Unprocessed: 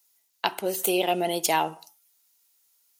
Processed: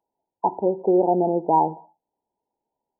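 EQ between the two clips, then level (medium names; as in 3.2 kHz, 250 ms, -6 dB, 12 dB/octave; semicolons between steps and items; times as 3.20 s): dynamic bell 650 Hz, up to -6 dB, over -39 dBFS, Q 3.9; brick-wall FIR low-pass 1 kHz; +8.0 dB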